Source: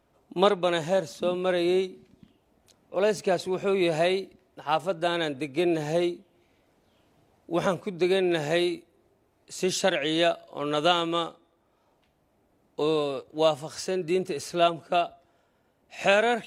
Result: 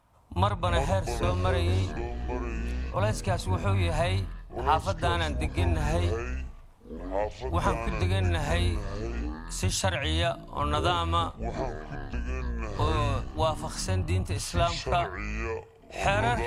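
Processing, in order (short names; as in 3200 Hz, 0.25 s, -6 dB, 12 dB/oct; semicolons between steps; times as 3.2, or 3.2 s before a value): octaver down 2 oct, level +2 dB; compressor, threshold -23 dBFS, peak gain reduction 9.5 dB; fifteen-band EQ 100 Hz +7 dB, 400 Hz -12 dB, 1000 Hz +10 dB, 10000 Hz +6 dB; echoes that change speed 0.125 s, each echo -7 st, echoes 3, each echo -6 dB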